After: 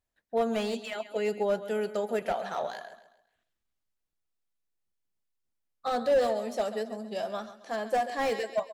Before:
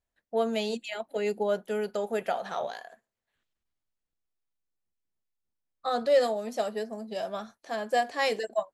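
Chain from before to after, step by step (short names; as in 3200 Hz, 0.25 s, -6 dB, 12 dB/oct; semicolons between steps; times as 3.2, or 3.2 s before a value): wow and flutter 26 cents; feedback echo 0.135 s, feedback 39%, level -14 dB; slew limiter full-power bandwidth 56 Hz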